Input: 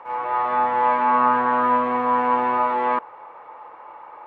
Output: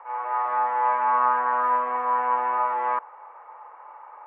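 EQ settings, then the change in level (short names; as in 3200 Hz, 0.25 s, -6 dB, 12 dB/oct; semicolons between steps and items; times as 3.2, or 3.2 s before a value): HPF 740 Hz 12 dB/oct; LPF 2200 Hz 12 dB/oct; air absorption 310 m; 0.0 dB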